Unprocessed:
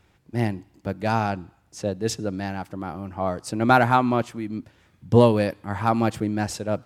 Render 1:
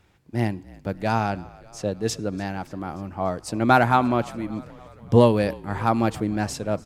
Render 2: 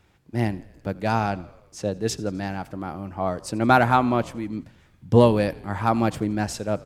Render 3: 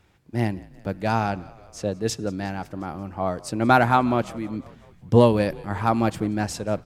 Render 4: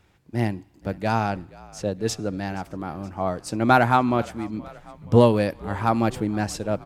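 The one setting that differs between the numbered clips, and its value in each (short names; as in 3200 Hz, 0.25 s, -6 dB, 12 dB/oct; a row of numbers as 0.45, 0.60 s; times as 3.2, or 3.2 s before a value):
frequency-shifting echo, time: 290, 85, 179, 473 ms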